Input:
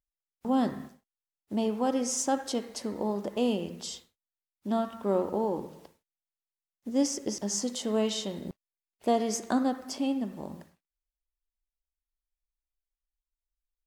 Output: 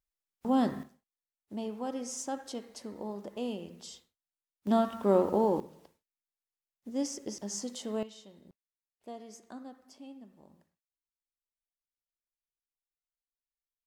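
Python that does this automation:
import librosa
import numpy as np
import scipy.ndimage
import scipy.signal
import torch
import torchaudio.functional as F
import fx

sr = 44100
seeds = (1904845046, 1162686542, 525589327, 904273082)

y = fx.gain(x, sr, db=fx.steps((0.0, -0.5), (0.83, -8.5), (4.67, 2.5), (5.6, -6.5), (8.03, -19.0)))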